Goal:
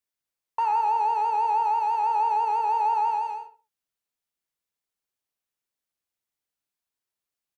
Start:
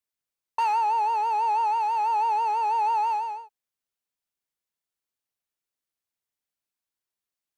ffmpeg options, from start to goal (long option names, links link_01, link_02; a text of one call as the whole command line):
ffmpeg -i in.wav -filter_complex "[0:a]acrossover=split=1700[link_01][link_02];[link_02]alimiter=level_in=18.5dB:limit=-24dB:level=0:latency=1:release=195,volume=-18.5dB[link_03];[link_01][link_03]amix=inputs=2:normalize=0,asplit=2[link_04][link_05];[link_05]adelay=66,lowpass=frequency=2100:poles=1,volume=-7.5dB,asplit=2[link_06][link_07];[link_07]adelay=66,lowpass=frequency=2100:poles=1,volume=0.27,asplit=2[link_08][link_09];[link_09]adelay=66,lowpass=frequency=2100:poles=1,volume=0.27[link_10];[link_04][link_06][link_08][link_10]amix=inputs=4:normalize=0" out.wav